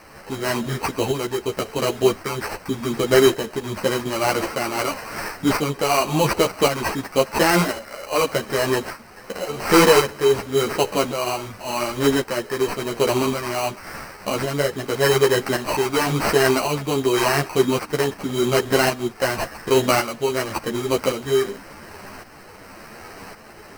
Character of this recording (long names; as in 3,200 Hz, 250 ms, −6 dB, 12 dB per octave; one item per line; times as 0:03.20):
a quantiser's noise floor 8 bits, dither triangular
tremolo saw up 0.9 Hz, depth 60%
aliases and images of a low sample rate 3,500 Hz, jitter 0%
a shimmering, thickened sound